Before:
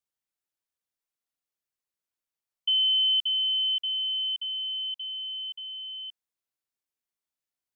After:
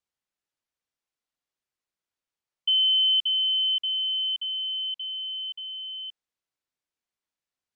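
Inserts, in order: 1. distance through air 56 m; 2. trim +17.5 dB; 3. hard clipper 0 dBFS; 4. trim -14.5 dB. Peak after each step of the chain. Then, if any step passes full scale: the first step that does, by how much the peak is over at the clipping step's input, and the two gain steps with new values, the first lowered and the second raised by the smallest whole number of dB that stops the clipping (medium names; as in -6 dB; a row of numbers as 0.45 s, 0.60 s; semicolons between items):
-21.0 dBFS, -3.5 dBFS, -3.5 dBFS, -18.0 dBFS; nothing clips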